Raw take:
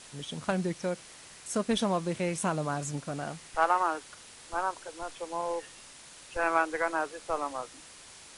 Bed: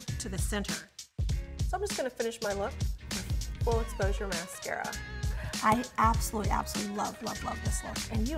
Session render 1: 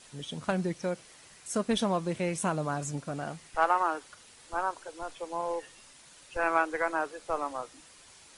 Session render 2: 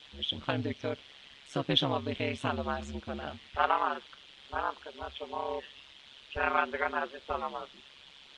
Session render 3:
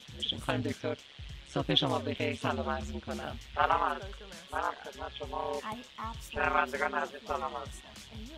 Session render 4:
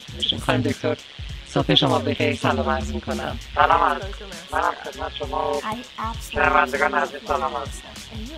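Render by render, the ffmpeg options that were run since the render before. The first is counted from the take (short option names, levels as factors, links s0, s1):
-af "afftdn=nr=6:nf=-51"
-af "lowpass=f=3300:t=q:w=4.8,aeval=exprs='val(0)*sin(2*PI*69*n/s)':c=same"
-filter_complex "[1:a]volume=0.188[s0];[0:a][s0]amix=inputs=2:normalize=0"
-af "volume=3.76,alimiter=limit=0.794:level=0:latency=1"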